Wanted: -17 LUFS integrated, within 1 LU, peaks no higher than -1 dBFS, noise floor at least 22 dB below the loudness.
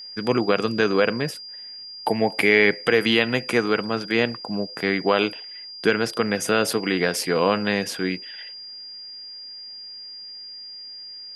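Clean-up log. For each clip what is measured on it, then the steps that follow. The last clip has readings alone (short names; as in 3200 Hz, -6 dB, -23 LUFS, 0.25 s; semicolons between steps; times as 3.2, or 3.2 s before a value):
steady tone 4800 Hz; tone level -36 dBFS; loudness -22.0 LUFS; peak -4.0 dBFS; loudness target -17.0 LUFS
-> notch 4800 Hz, Q 30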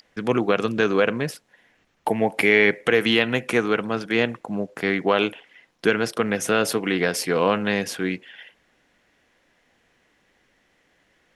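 steady tone none; loudness -22.0 LUFS; peak -4.0 dBFS; loudness target -17.0 LUFS
-> gain +5 dB; limiter -1 dBFS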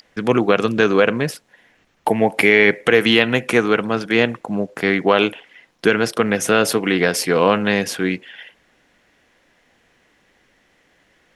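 loudness -17.5 LUFS; peak -1.0 dBFS; noise floor -60 dBFS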